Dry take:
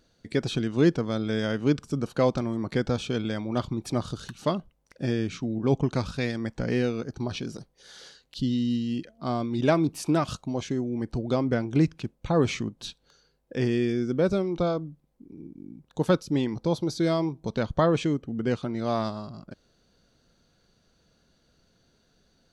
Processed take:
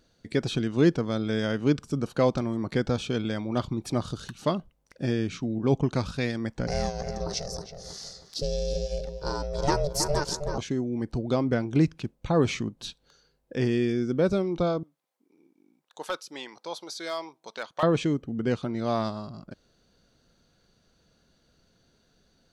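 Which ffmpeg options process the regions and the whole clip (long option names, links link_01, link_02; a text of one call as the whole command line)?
ffmpeg -i in.wav -filter_complex "[0:a]asettb=1/sr,asplit=3[link_01][link_02][link_03];[link_01]atrim=end=6.674[link_04];[link_02]atrim=start=6.67:end=10.58,asetpts=PTS-STARTPTS,afade=type=in:duration=0.004:curve=qsin,afade=type=out:start_time=3.906:duration=0.004:curve=qsin,highshelf=frequency=4000:width_type=q:width=3:gain=8.5,aeval=exprs='val(0)*sin(2*PI*290*n/s)':channel_layout=same,asplit=2[link_05][link_06];[link_06]adelay=319,lowpass=frequency=1900:poles=1,volume=-6.5dB,asplit=2[link_07][link_08];[link_08]adelay=319,lowpass=frequency=1900:poles=1,volume=0.36,asplit=2[link_09][link_10];[link_10]adelay=319,lowpass=frequency=1900:poles=1,volume=0.36,asplit=2[link_11][link_12];[link_12]adelay=319,lowpass=frequency=1900:poles=1,volume=0.36[link_13];[link_05][link_07][link_09][link_11][link_13]amix=inputs=5:normalize=0,atrim=end_sample=172431[link_14];[link_03]atrim=start=10.576[link_15];[link_04][link_14]acrossfade=duration=0.004:curve1=hsin:curve2=qsin[link_16];[link_16][link_15]acrossfade=duration=0.004:curve1=qsin:curve2=hsin,asettb=1/sr,asplit=3[link_17][link_18][link_19];[link_17]atrim=end=14.834[link_20];[link_18]atrim=start=14.83:end=17.83,asetpts=PTS-STARTPTS,afade=type=in:duration=0.004:curve=qsin,afade=type=out:start_time=2.996:duration=0.004:curve=qsin,highpass=850,volume=22dB,asoftclip=hard,volume=-22dB[link_21];[link_19]atrim=start=17.826[link_22];[link_20][link_21]acrossfade=duration=0.004:curve1=hsin:curve2=qsin[link_23];[link_23][link_22]acrossfade=duration=0.004:curve1=qsin:curve2=hsin" out.wav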